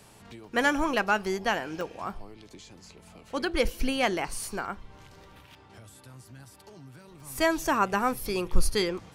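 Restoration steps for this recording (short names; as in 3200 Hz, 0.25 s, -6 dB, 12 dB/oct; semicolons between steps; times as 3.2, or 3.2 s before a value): interpolate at 1.81/4.98/7.2, 2.3 ms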